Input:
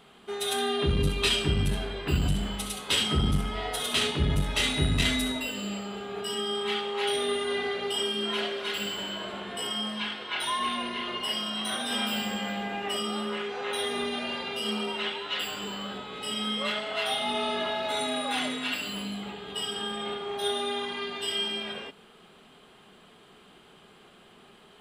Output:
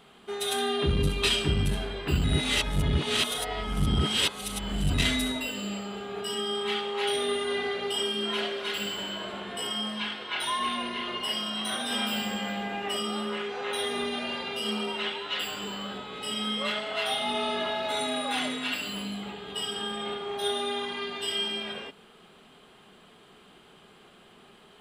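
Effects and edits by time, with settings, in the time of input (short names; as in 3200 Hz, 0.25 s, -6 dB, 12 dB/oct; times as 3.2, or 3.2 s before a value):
2.24–4.94 reverse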